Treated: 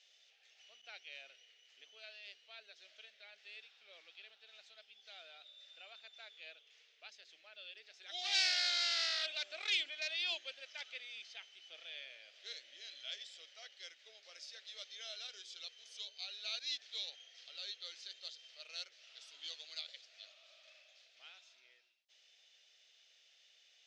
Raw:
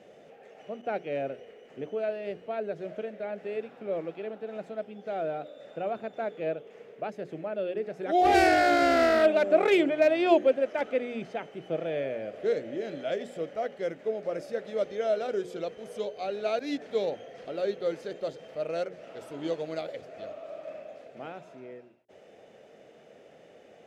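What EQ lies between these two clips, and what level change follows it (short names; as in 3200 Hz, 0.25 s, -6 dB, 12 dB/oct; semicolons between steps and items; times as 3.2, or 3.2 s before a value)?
Butterworth band-pass 4700 Hz, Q 1.6; high shelf 4700 Hz -8 dB; +10.0 dB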